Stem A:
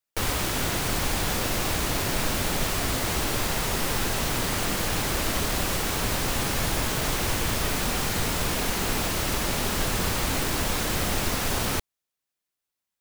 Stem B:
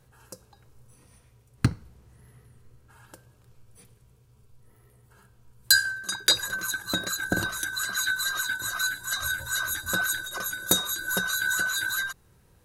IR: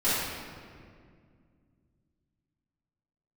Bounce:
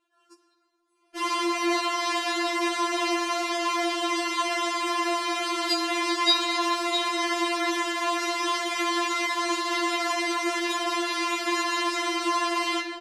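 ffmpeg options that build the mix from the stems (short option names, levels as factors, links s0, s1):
-filter_complex "[0:a]aecho=1:1:6.8:0.56,adelay=1000,volume=1.19,asplit=2[s0][s1];[s1]volume=0.211[s2];[1:a]volume=0.631,asplit=2[s3][s4];[s4]volume=0.112[s5];[2:a]atrim=start_sample=2205[s6];[s2][s5]amix=inputs=2:normalize=0[s7];[s7][s6]afir=irnorm=-1:irlink=0[s8];[s0][s3][s8]amix=inputs=3:normalize=0,highpass=210,lowpass=4500,afftfilt=real='re*4*eq(mod(b,16),0)':imag='im*4*eq(mod(b,16),0)':win_size=2048:overlap=0.75"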